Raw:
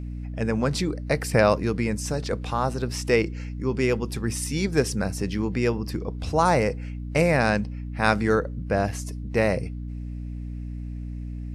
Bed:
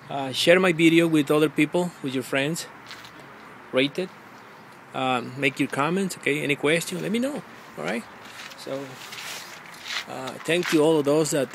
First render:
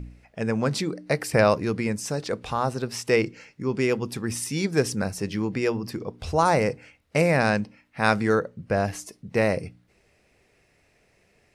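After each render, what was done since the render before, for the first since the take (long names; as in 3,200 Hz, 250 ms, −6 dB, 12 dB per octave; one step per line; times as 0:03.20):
hum removal 60 Hz, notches 5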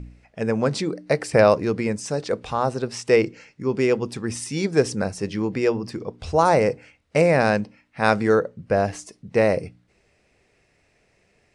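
Butterworth low-pass 9,600 Hz 36 dB per octave
dynamic equaliser 510 Hz, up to +5 dB, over −33 dBFS, Q 0.85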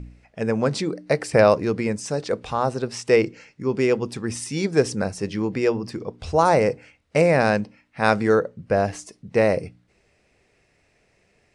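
no processing that can be heard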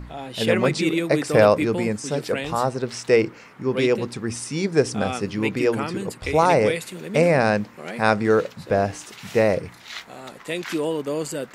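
mix in bed −5.5 dB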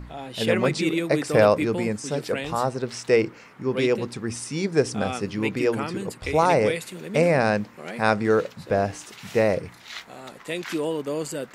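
level −2 dB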